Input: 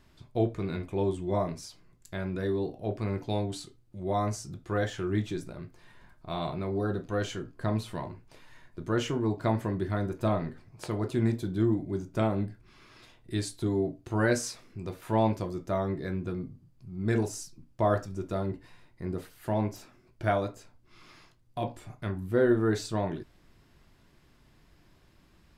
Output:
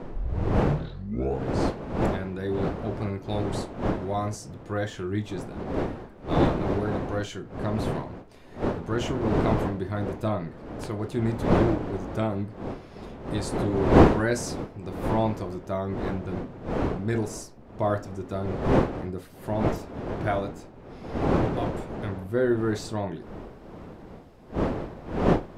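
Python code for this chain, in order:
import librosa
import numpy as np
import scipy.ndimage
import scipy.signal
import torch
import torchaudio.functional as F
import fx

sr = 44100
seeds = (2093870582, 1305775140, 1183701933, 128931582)

y = fx.tape_start_head(x, sr, length_s=1.91)
y = fx.dmg_wind(y, sr, seeds[0], corner_hz=470.0, level_db=-29.0)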